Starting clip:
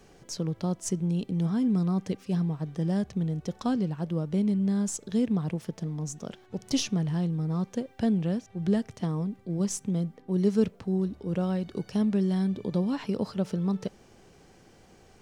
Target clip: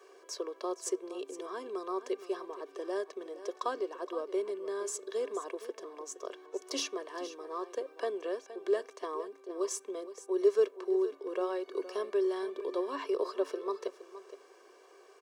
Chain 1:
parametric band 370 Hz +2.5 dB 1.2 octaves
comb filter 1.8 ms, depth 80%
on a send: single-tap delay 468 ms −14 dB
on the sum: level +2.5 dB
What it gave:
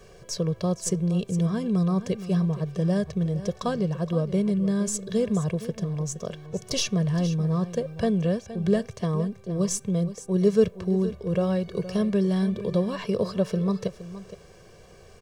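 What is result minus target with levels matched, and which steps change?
250 Hz band +6.5 dB
add first: Chebyshev high-pass with heavy ripple 270 Hz, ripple 9 dB

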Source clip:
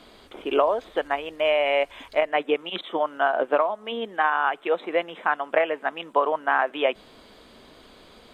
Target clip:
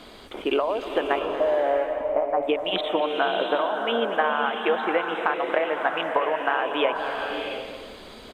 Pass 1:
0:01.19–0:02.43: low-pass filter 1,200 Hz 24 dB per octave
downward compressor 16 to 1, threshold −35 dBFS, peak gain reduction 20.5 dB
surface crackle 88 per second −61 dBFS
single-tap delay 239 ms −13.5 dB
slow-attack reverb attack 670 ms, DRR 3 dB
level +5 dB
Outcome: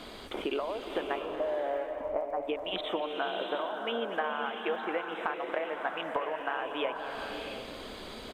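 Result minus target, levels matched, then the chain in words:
downward compressor: peak gain reduction +10 dB
0:01.19–0:02.43: low-pass filter 1,200 Hz 24 dB per octave
downward compressor 16 to 1, threshold −24.5 dBFS, peak gain reduction 11 dB
surface crackle 88 per second −61 dBFS
single-tap delay 239 ms −13.5 dB
slow-attack reverb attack 670 ms, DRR 3 dB
level +5 dB

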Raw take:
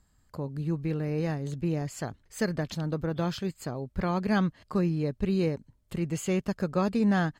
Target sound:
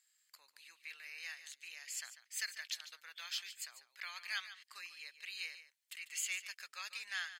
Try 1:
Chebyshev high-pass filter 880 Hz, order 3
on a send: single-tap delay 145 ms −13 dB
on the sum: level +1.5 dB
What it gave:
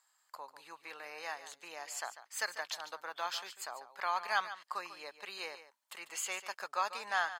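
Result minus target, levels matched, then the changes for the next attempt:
1,000 Hz band +15.5 dB
change: Chebyshev high-pass filter 2,100 Hz, order 3

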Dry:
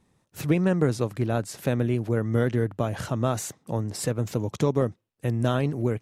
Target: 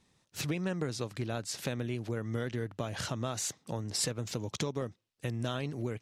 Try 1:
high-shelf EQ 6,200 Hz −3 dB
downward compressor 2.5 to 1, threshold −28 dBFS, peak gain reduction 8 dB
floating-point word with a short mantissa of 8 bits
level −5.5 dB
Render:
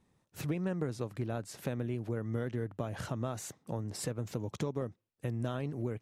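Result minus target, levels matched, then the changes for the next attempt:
4,000 Hz band −9.5 dB
add after downward compressor: parametric band 4,700 Hz +12 dB 2.4 octaves

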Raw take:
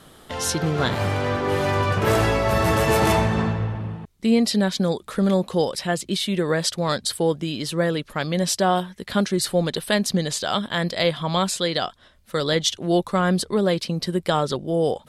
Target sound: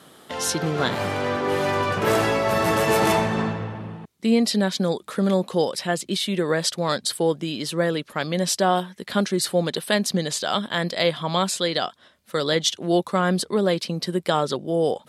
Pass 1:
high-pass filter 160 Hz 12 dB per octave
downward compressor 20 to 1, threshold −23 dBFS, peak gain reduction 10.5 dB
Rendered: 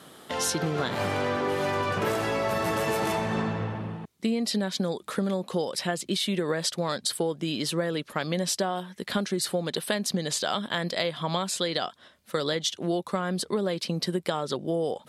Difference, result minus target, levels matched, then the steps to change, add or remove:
downward compressor: peak gain reduction +10.5 dB
remove: downward compressor 20 to 1, threshold −23 dBFS, peak gain reduction 10.5 dB

